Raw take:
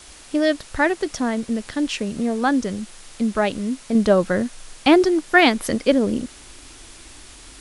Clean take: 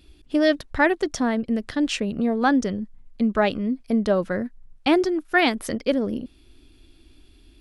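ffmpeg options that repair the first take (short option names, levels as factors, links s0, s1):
-af "afwtdn=0.0079,asetnsamples=n=441:p=0,asendcmd='3.95 volume volume -5dB',volume=1"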